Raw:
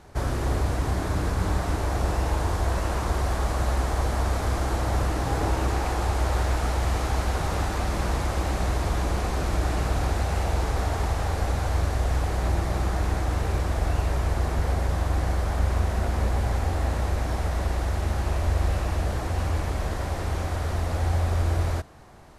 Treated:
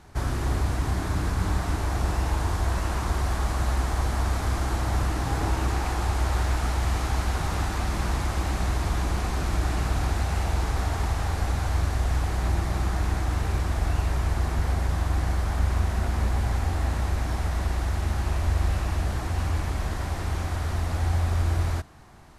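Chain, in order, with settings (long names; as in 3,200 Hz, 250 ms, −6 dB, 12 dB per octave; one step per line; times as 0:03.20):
parametric band 520 Hz −7 dB 0.8 octaves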